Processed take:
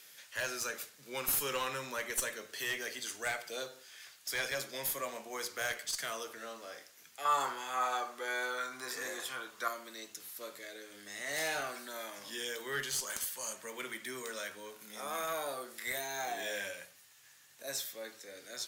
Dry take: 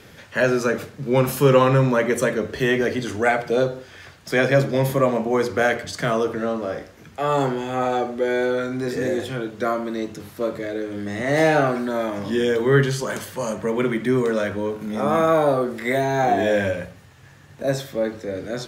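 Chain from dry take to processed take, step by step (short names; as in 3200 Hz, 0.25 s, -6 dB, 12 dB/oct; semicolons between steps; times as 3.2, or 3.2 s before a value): differentiator; one-sided clip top -32 dBFS; 7.25–9.68 bell 1100 Hz +14 dB 0.92 oct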